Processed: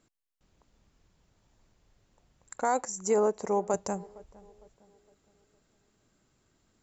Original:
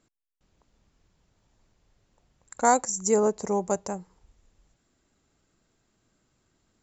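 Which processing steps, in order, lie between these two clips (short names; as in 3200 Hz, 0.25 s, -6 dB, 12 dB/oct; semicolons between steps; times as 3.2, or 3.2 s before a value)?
2.56–3.74 tone controls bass -8 dB, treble -8 dB; limiter -16 dBFS, peak gain reduction 7.5 dB; tape echo 0.459 s, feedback 48%, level -20 dB, low-pass 1000 Hz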